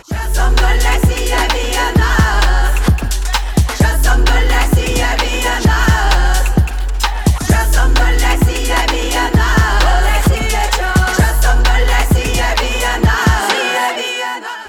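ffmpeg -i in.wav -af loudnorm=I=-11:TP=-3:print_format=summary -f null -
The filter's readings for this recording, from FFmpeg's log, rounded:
Input Integrated:    -14.0 LUFS
Input True Peak:      -3.1 dBTP
Input LRA:             1.2 LU
Input Threshold:     -24.0 LUFS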